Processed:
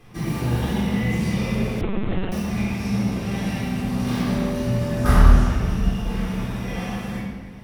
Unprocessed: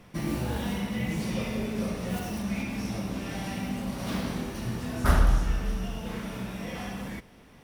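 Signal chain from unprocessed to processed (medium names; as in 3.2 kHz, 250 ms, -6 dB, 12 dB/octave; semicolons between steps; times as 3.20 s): 4.16–5.04 s: whistle 580 Hz -37 dBFS; simulated room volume 1500 m³, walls mixed, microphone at 3.8 m; 1.81–2.32 s: LPC vocoder at 8 kHz pitch kept; trim -1.5 dB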